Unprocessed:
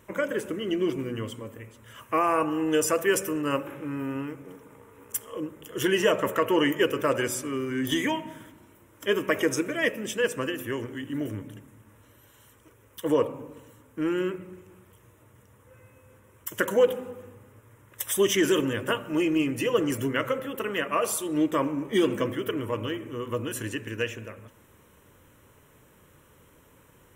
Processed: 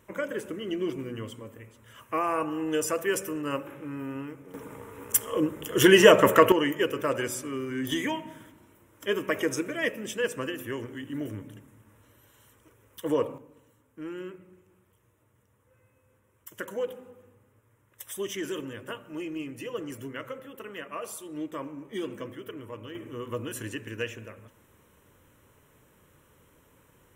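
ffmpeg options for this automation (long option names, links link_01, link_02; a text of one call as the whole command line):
ffmpeg -i in.wav -af "asetnsamples=nb_out_samples=441:pad=0,asendcmd='4.54 volume volume 7.5dB;6.52 volume volume -3dB;13.38 volume volume -11dB;22.95 volume volume -3.5dB',volume=-4dB" out.wav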